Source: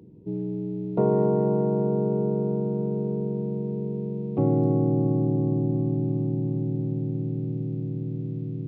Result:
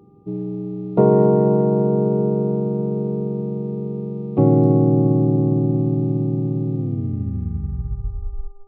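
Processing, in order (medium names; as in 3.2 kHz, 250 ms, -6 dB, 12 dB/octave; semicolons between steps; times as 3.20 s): tape stop on the ending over 1.94 s; mains buzz 400 Hz, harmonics 3, -56 dBFS -7 dB/octave; upward expansion 1.5:1, over -39 dBFS; trim +8.5 dB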